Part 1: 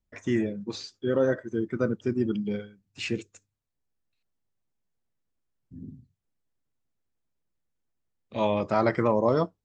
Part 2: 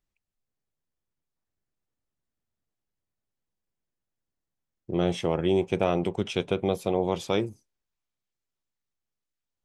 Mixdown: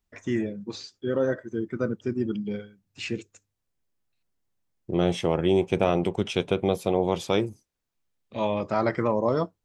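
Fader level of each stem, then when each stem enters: -1.0, +2.0 dB; 0.00, 0.00 s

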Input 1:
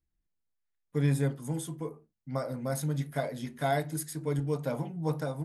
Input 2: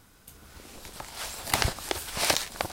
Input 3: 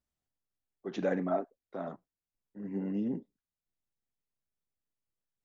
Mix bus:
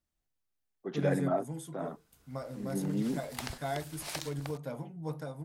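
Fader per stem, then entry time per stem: -7.0, -14.5, +0.5 dB; 0.00, 1.85, 0.00 s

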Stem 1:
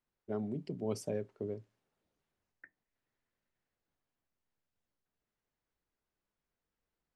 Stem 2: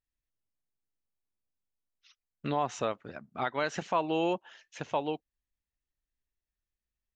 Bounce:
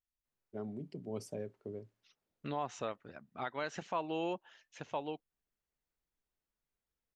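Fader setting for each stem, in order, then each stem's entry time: -5.0, -7.5 dB; 0.25, 0.00 s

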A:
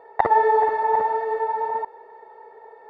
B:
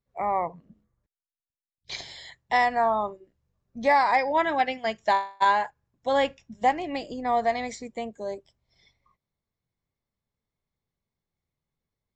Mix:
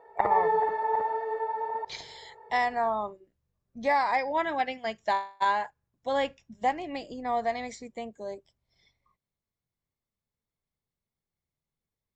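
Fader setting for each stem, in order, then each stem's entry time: -7.0, -4.5 dB; 0.00, 0.00 s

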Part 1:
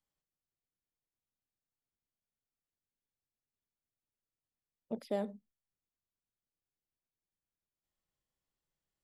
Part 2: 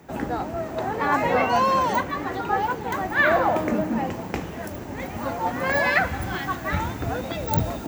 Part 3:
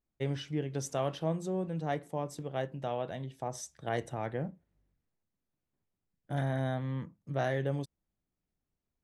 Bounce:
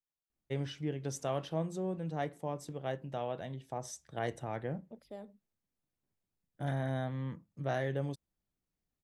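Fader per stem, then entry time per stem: -12.0 dB, off, -2.5 dB; 0.00 s, off, 0.30 s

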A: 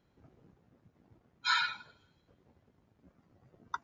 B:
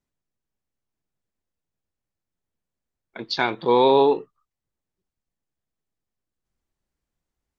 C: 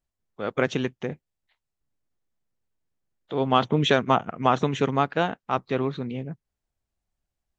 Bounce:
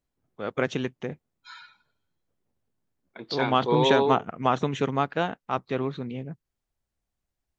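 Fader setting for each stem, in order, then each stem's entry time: -16.5, -6.5, -2.5 dB; 0.00, 0.00, 0.00 s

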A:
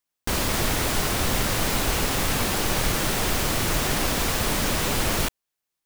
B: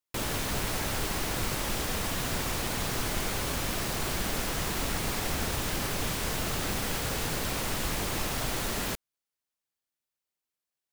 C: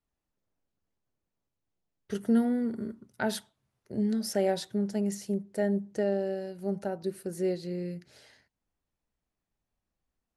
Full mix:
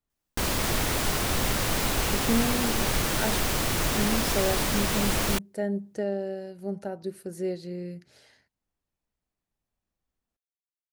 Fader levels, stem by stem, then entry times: -2.5 dB, off, -1.0 dB; 0.10 s, off, 0.00 s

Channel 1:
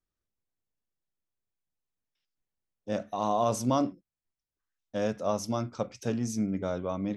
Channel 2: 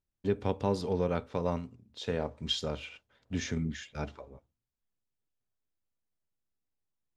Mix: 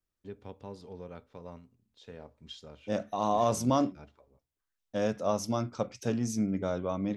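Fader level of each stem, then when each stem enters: 0.0, -14.5 dB; 0.00, 0.00 s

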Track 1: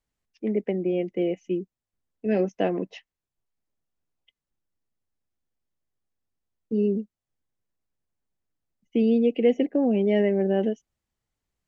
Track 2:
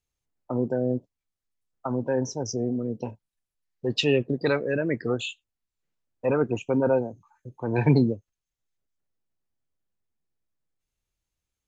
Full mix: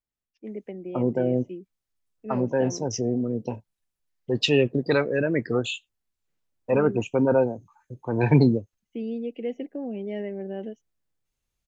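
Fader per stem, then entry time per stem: -10.5, +2.0 dB; 0.00, 0.45 s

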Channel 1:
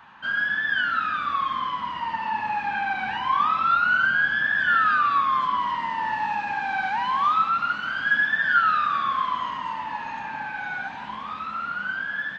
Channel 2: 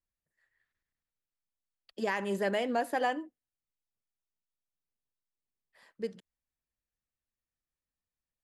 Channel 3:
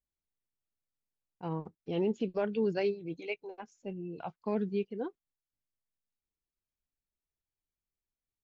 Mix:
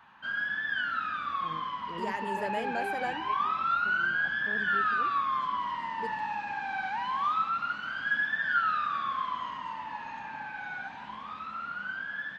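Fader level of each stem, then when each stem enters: -7.5, -5.5, -11.0 dB; 0.00, 0.00, 0.00 s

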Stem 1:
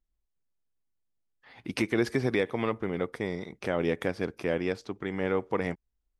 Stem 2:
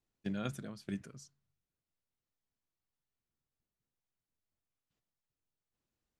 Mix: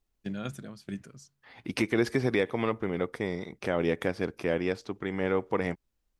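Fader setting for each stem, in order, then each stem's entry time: +0.5, +2.0 dB; 0.00, 0.00 s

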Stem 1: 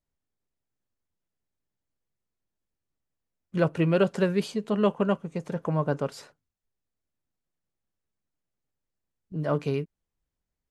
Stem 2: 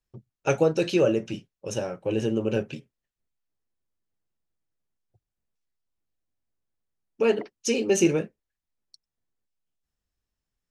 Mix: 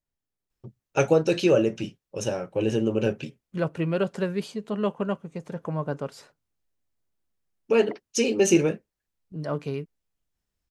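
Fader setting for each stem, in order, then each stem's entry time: -3.0, +1.5 dB; 0.00, 0.50 s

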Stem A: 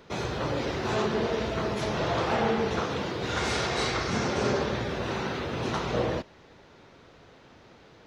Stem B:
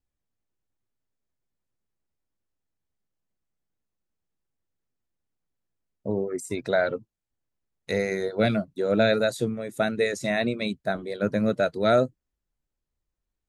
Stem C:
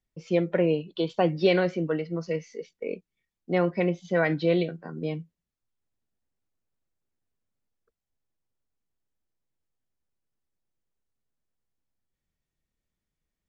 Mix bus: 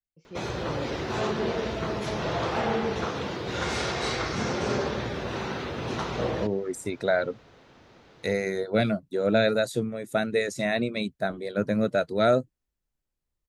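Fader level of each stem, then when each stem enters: -1.0, -1.0, -17.0 dB; 0.25, 0.35, 0.00 s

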